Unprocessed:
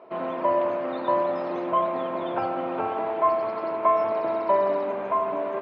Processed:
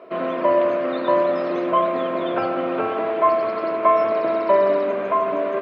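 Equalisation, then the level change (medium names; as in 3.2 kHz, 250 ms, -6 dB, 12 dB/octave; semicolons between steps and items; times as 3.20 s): high-pass 180 Hz 6 dB/octave; peaking EQ 860 Hz -14 dB 0.33 oct; +8.0 dB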